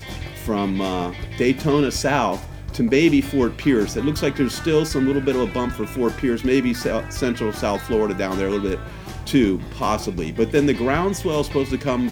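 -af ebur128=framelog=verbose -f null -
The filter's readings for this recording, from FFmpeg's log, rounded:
Integrated loudness:
  I:         -21.2 LUFS
  Threshold: -31.3 LUFS
Loudness range:
  LRA:         2.7 LU
  Threshold: -41.2 LUFS
  LRA low:   -22.6 LUFS
  LRA high:  -19.9 LUFS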